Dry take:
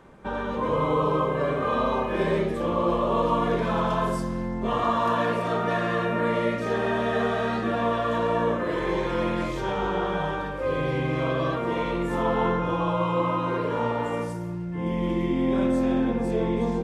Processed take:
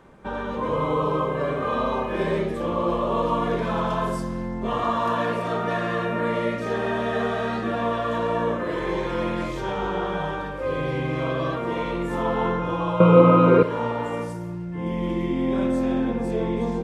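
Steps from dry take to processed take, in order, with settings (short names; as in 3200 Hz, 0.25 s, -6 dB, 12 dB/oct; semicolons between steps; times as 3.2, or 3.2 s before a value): 13–13.63 small resonant body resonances 220/430/1300/2300 Hz, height 17 dB, ringing for 25 ms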